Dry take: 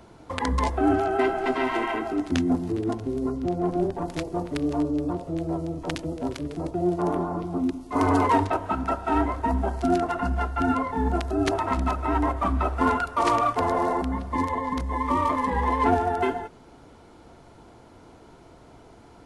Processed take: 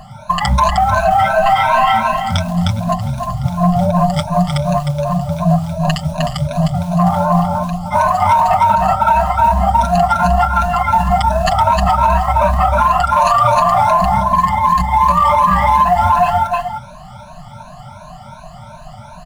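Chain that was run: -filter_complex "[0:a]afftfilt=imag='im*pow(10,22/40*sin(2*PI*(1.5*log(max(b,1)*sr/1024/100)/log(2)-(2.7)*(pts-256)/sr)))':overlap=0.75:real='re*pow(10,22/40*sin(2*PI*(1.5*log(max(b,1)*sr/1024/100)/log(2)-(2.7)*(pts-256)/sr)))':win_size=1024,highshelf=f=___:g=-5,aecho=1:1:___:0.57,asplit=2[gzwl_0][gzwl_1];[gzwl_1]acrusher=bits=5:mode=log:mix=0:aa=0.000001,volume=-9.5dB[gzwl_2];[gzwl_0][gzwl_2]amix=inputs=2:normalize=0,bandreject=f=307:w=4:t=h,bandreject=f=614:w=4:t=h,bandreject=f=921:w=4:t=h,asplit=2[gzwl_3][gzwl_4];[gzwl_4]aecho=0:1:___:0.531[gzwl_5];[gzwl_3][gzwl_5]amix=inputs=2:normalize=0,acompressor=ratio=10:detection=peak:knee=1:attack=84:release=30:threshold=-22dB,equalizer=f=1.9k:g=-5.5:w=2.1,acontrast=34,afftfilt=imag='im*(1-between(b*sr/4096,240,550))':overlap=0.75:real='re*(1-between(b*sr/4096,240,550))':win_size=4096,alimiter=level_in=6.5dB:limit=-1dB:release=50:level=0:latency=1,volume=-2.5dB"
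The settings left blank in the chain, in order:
2.4k, 6.6, 308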